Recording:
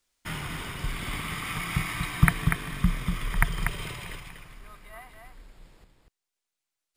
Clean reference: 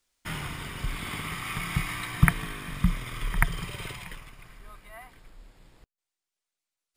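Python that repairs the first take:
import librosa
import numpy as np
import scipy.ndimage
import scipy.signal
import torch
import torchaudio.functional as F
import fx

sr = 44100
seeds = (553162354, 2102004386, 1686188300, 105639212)

y = fx.fix_echo_inverse(x, sr, delay_ms=241, level_db=-5.5)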